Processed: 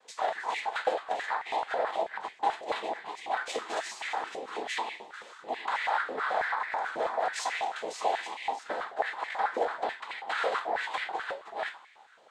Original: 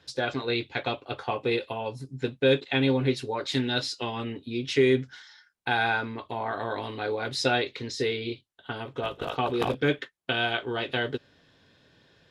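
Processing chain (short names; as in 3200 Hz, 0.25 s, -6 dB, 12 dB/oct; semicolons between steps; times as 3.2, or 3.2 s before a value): reverse delay 0.435 s, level -9.5 dB; high shelf 2700 Hz -12 dB; compressor 10:1, threshold -31 dBFS, peak gain reduction 14 dB; noise vocoder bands 6; two-slope reverb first 0.3 s, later 1.6 s, DRR 2.5 dB; stepped high-pass 9.2 Hz 560–2100 Hz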